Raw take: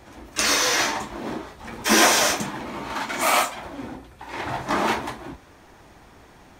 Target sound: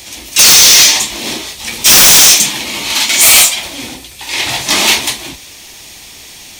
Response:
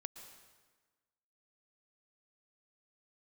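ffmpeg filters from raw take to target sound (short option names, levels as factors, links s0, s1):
-af "aexciter=amount=9.8:drive=5.1:freq=2200,acontrast=74,volume=0.891"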